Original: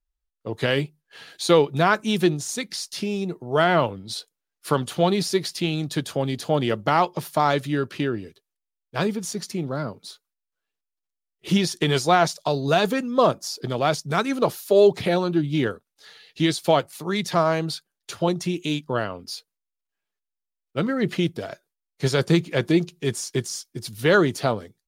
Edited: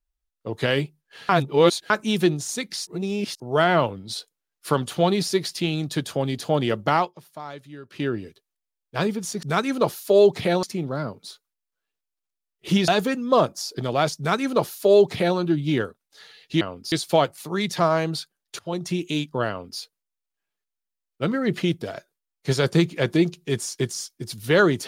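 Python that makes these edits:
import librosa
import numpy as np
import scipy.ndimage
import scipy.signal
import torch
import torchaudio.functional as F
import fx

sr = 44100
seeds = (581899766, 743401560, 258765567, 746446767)

y = fx.edit(x, sr, fx.reverse_span(start_s=1.29, length_s=0.61),
    fx.reverse_span(start_s=2.87, length_s=0.53),
    fx.fade_down_up(start_s=6.95, length_s=1.12, db=-16.5, fade_s=0.19),
    fx.cut(start_s=11.68, length_s=1.06),
    fx.duplicate(start_s=14.04, length_s=1.2, to_s=9.43),
    fx.fade_in_from(start_s=18.14, length_s=0.33, floor_db=-19.0),
    fx.duplicate(start_s=19.04, length_s=0.31, to_s=16.47), tone=tone)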